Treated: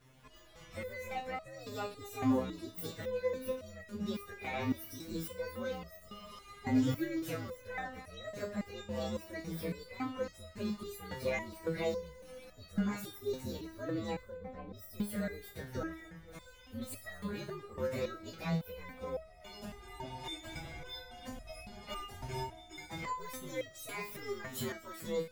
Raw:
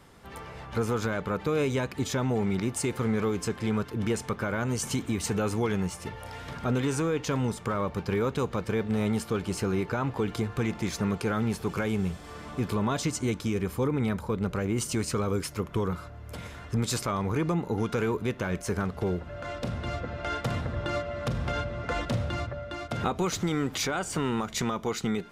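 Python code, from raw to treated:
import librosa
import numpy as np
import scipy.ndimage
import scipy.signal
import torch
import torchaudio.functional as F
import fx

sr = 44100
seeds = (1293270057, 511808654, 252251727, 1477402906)

p1 = fx.partial_stretch(x, sr, pct=125)
p2 = fx.lowpass(p1, sr, hz=1300.0, slope=12, at=(14.27, 14.72), fade=0.02)
p3 = p2 + fx.echo_feedback(p2, sr, ms=240, feedback_pct=44, wet_db=-17, dry=0)
p4 = fx.resonator_held(p3, sr, hz=3.6, low_hz=130.0, high_hz=640.0)
y = p4 * 10.0 ** (7.0 / 20.0)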